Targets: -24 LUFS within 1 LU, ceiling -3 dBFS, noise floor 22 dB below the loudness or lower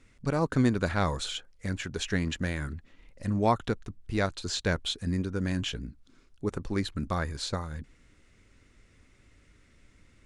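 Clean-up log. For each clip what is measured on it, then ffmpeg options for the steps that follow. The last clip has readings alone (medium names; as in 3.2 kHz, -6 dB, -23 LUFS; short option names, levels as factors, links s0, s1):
loudness -31.0 LUFS; peak level -11.0 dBFS; loudness target -24.0 LUFS
-> -af "volume=2.24"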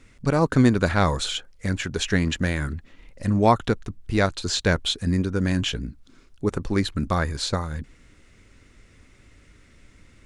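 loudness -24.0 LUFS; peak level -4.0 dBFS; noise floor -55 dBFS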